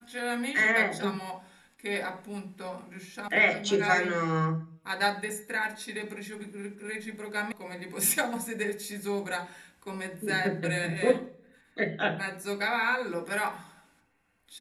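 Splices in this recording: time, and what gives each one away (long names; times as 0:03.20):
0:03.28: cut off before it has died away
0:07.52: cut off before it has died away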